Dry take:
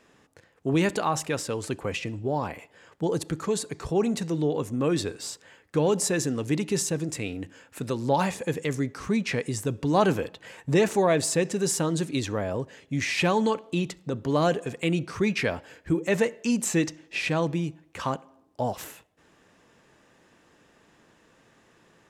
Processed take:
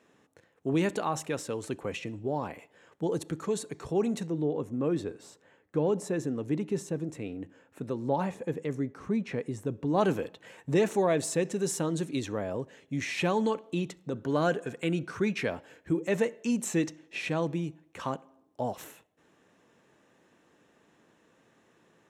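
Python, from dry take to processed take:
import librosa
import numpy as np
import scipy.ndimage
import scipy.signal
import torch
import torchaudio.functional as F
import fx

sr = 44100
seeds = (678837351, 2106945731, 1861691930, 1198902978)

y = fx.high_shelf(x, sr, hz=2100.0, db=-11.0, at=(4.26, 9.97), fade=0.02)
y = fx.peak_eq(y, sr, hz=1500.0, db=11.0, octaves=0.2, at=(14.15, 15.3))
y = fx.highpass(y, sr, hz=280.0, slope=6)
y = fx.low_shelf(y, sr, hz=490.0, db=8.5)
y = fx.notch(y, sr, hz=4800.0, q=9.2)
y = y * 10.0 ** (-6.5 / 20.0)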